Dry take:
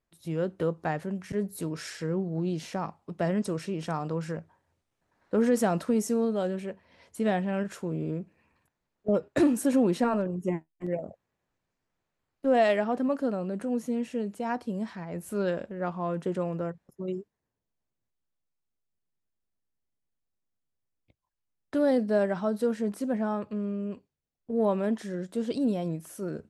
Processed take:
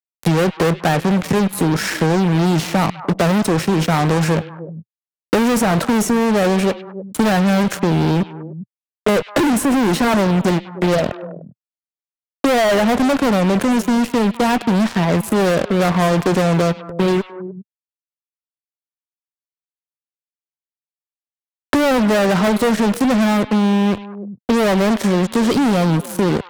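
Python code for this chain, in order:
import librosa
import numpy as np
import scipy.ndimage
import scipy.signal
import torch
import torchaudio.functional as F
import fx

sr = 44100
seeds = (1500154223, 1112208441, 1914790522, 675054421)

p1 = fx.low_shelf(x, sr, hz=160.0, db=3.0)
p2 = fx.fuzz(p1, sr, gain_db=37.0, gate_db=-44.0)
p3 = p2 + fx.echo_stepped(p2, sr, ms=100, hz=2900.0, octaves=-1.4, feedback_pct=70, wet_db=-12.0, dry=0)
y = fx.band_squash(p3, sr, depth_pct=70)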